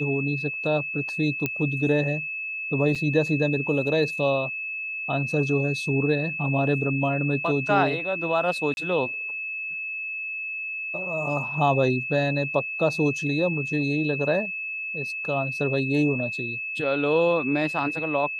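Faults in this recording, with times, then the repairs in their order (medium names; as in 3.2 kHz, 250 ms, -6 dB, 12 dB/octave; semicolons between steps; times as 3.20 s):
whine 2.6 kHz -29 dBFS
1.46 s: pop -11 dBFS
2.95–2.96 s: dropout 5.4 ms
8.74–8.77 s: dropout 31 ms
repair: de-click; band-stop 2.6 kHz, Q 30; interpolate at 2.95 s, 5.4 ms; interpolate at 8.74 s, 31 ms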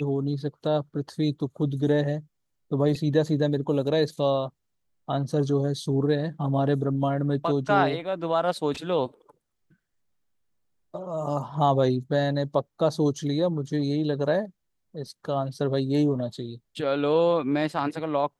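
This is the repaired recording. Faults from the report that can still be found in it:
nothing left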